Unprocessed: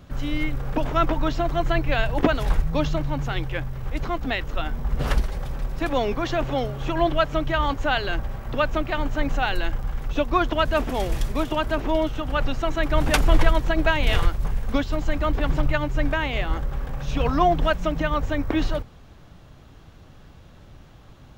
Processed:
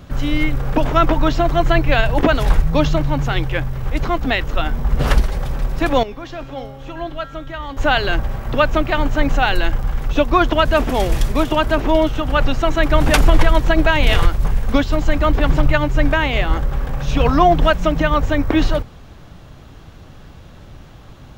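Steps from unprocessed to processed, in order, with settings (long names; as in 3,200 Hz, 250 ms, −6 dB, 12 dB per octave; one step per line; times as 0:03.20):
0:06.03–0:07.77: tuned comb filter 270 Hz, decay 1.1 s, mix 80%
boost into a limiter +8.5 dB
level −1 dB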